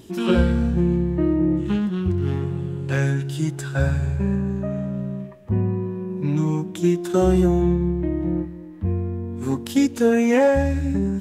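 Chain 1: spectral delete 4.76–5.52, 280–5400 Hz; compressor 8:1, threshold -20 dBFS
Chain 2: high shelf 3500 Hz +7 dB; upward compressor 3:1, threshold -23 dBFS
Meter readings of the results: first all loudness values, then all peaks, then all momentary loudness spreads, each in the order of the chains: -26.0, -22.0 LUFS; -11.5, -5.5 dBFS; 4, 9 LU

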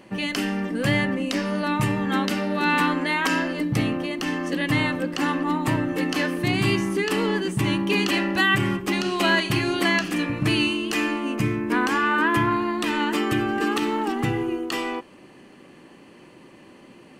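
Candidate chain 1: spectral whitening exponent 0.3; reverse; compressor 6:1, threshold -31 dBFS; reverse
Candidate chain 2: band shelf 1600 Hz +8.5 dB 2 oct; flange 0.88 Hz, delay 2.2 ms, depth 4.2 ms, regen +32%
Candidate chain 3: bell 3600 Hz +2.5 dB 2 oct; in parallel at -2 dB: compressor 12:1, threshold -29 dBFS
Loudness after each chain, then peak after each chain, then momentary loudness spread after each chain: -32.0, -21.5, -20.5 LUFS; -19.0, -5.0, -6.0 dBFS; 14, 9, 5 LU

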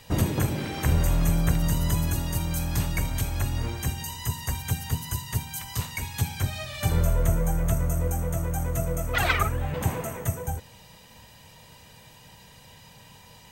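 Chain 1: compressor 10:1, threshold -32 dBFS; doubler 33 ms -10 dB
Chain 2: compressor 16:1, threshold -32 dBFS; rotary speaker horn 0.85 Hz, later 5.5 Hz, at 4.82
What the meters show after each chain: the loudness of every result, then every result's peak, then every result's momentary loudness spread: -37.0, -39.5 LUFS; -19.5, -21.0 dBFS; 13, 14 LU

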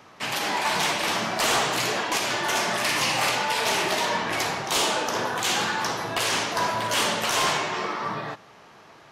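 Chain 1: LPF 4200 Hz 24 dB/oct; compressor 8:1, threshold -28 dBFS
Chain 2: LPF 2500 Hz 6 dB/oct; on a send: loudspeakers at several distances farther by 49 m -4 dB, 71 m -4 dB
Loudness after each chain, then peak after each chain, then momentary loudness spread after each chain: -30.5, -24.0 LUFS; -18.0, -12.0 dBFS; 3, 5 LU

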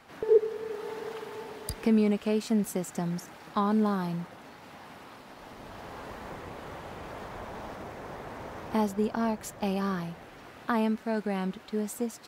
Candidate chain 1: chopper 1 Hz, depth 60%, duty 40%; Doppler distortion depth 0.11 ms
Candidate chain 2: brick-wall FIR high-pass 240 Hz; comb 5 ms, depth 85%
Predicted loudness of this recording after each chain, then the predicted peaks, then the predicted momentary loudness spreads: -33.5, -30.5 LUFS; -11.5, -7.0 dBFS; 22, 19 LU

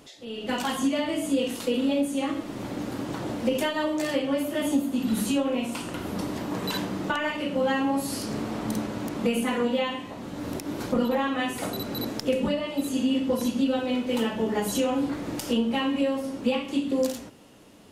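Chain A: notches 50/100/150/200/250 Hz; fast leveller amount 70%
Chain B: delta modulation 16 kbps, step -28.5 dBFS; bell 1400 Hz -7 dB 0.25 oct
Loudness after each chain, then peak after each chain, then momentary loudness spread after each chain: -22.5, -28.0 LUFS; -4.5, -12.0 dBFS; 2, 7 LU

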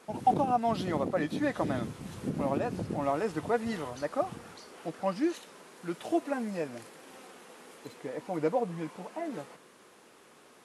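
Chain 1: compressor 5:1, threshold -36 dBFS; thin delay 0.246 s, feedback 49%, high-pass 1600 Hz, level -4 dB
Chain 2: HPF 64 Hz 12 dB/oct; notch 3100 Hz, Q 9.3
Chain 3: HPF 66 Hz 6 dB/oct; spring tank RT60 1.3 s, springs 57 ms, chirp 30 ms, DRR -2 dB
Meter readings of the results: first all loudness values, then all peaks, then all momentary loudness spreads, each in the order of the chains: -41.5, -32.5, -28.5 LUFS; -24.5, -13.5, -11.5 dBFS; 11, 20, 17 LU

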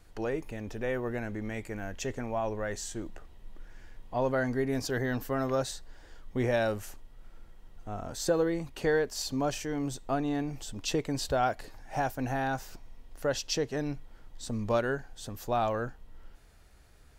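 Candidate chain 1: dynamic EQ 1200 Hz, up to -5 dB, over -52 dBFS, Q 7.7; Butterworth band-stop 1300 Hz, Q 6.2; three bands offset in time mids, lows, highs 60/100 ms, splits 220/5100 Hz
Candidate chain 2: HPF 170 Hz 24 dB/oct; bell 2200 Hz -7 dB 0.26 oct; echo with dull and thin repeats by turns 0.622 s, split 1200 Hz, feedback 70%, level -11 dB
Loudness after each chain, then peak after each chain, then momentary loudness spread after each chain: -33.5, -33.0 LUFS; -15.5, -15.0 dBFS; 13, 14 LU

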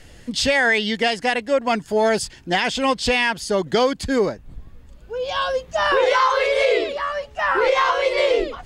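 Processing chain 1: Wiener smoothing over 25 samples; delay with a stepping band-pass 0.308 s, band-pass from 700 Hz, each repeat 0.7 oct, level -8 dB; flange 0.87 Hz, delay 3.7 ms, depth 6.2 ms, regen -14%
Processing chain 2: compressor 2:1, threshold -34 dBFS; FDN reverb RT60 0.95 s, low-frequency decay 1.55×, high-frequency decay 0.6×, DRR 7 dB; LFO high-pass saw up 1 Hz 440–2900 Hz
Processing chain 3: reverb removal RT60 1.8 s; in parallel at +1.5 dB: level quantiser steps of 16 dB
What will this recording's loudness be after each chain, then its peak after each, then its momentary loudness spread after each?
-24.5, -26.5, -18.5 LUFS; -10.0, -10.0, -1.5 dBFS; 8, 11, 7 LU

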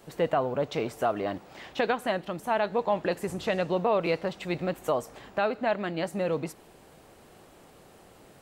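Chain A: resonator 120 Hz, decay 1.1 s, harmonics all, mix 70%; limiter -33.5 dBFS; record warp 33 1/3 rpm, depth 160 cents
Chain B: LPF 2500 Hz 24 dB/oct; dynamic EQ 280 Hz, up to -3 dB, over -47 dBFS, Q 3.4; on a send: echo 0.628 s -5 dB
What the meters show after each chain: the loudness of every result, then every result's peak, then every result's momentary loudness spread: -44.0, -29.0 LUFS; -33.5, -12.5 dBFS; 20, 8 LU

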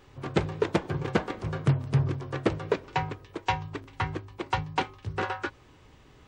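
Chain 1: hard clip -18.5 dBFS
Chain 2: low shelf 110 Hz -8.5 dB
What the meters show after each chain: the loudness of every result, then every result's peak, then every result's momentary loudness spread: -31.5, -32.0 LUFS; -18.5, -11.0 dBFS; 6, 6 LU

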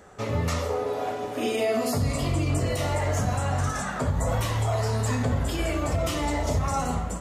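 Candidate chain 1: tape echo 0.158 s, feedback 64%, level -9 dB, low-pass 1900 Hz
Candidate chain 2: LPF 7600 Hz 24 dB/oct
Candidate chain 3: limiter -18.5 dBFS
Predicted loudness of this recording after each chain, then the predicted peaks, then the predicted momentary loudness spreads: -26.5, -27.0, -28.0 LUFS; -13.5, -14.0, -18.5 dBFS; 4, 3, 2 LU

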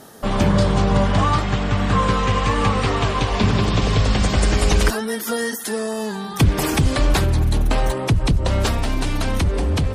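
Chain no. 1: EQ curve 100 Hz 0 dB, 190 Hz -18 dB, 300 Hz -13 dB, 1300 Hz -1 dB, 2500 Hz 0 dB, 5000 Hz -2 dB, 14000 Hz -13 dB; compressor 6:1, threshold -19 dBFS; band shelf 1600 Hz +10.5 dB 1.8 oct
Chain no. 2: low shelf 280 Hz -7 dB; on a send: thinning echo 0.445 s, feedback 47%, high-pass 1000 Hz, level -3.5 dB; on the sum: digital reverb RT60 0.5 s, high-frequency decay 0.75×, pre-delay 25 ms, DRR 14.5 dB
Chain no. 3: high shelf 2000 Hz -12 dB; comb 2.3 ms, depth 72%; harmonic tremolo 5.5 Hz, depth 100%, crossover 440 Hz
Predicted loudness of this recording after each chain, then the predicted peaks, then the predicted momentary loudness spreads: -20.5, -22.0, -23.5 LUFS; -2.0, -5.0, -5.5 dBFS; 7, 5, 9 LU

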